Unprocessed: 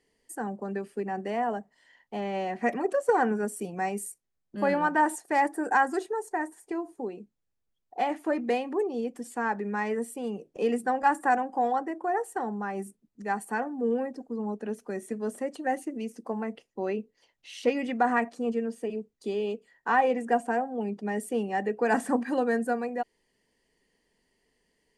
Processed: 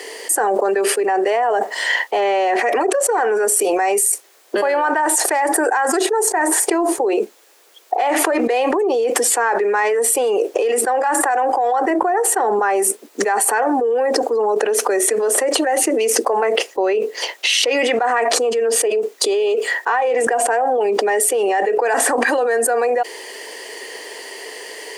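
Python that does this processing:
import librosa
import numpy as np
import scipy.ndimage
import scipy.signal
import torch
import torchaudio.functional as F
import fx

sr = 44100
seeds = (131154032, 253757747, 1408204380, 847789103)

y = fx.bass_treble(x, sr, bass_db=7, treble_db=-2, at=(11.9, 12.59))
y = scipy.signal.sosfilt(scipy.signal.butter(6, 370.0, 'highpass', fs=sr, output='sos'), y)
y = fx.env_flatten(y, sr, amount_pct=100)
y = F.gain(torch.from_numpy(y), 1.5).numpy()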